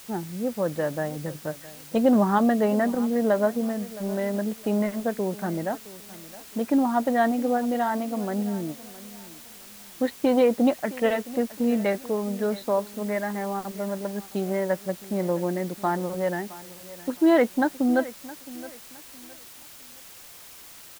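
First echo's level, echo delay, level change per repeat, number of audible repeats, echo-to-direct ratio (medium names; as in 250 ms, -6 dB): -18.0 dB, 666 ms, -10.0 dB, 2, -17.5 dB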